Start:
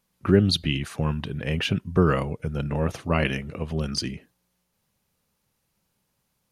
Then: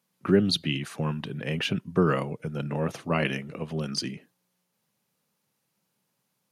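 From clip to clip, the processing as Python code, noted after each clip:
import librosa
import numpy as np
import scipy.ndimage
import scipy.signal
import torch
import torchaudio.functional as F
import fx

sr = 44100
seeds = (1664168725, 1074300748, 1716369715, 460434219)

y = scipy.signal.sosfilt(scipy.signal.butter(4, 130.0, 'highpass', fs=sr, output='sos'), x)
y = y * 10.0 ** (-2.0 / 20.0)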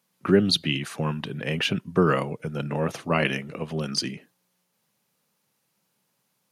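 y = fx.low_shelf(x, sr, hz=340.0, db=-3.5)
y = y * 10.0 ** (4.0 / 20.0)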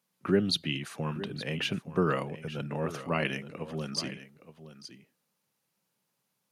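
y = x + 10.0 ** (-14.0 / 20.0) * np.pad(x, (int(869 * sr / 1000.0), 0))[:len(x)]
y = y * 10.0 ** (-6.5 / 20.0)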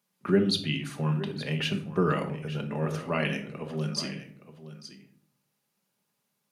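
y = fx.room_shoebox(x, sr, seeds[0], volume_m3=720.0, walls='furnished', distance_m=1.3)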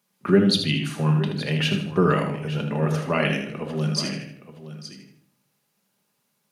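y = fx.echo_feedback(x, sr, ms=78, feedback_pct=36, wet_db=-9)
y = y * 10.0 ** (5.5 / 20.0)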